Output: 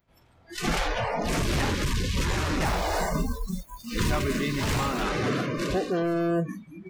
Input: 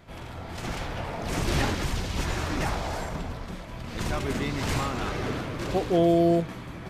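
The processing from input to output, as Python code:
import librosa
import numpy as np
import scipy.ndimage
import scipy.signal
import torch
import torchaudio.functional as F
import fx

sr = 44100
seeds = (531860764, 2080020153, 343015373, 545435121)

y = fx.quant_float(x, sr, bits=2, at=(2.65, 5.03))
y = 10.0 ** (-25.0 / 20.0) * np.tanh(y / 10.0 ** (-25.0 / 20.0))
y = fx.noise_reduce_blind(y, sr, reduce_db=30)
y = fx.rider(y, sr, range_db=5, speed_s=0.5)
y = y * librosa.db_to_amplitude(5.5)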